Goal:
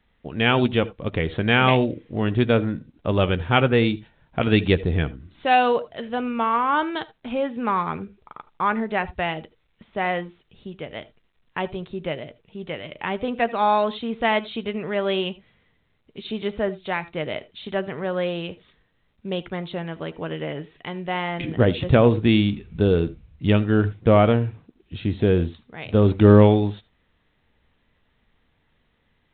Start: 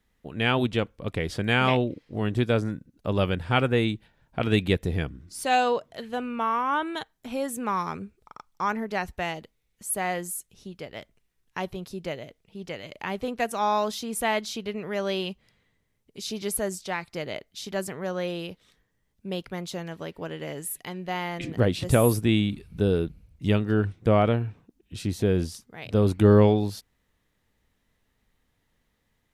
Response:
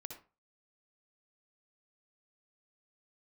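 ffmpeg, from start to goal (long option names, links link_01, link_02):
-filter_complex "[0:a]asplit=2[link_01][link_02];[1:a]atrim=start_sample=2205,atrim=end_sample=3528,adelay=13[link_03];[link_02][link_03]afir=irnorm=-1:irlink=0,volume=-8.5dB[link_04];[link_01][link_04]amix=inputs=2:normalize=0,volume=4.5dB" -ar 8000 -c:a pcm_alaw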